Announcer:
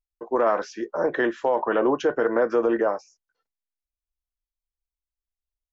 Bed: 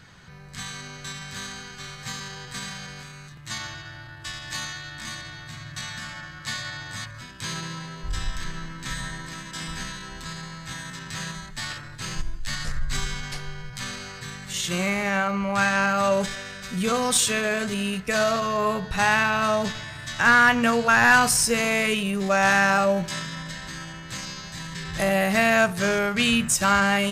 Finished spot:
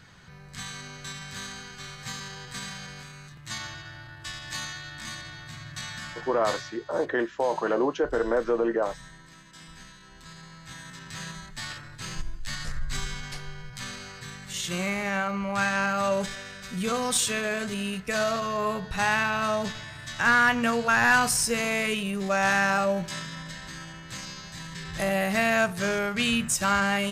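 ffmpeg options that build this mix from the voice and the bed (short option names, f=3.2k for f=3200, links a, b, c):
-filter_complex "[0:a]adelay=5950,volume=-3.5dB[a];[1:a]volume=7.5dB,afade=t=out:st=6.46:d=0.3:silence=0.266073,afade=t=in:st=9.97:d=1.48:silence=0.316228[b];[a][b]amix=inputs=2:normalize=0"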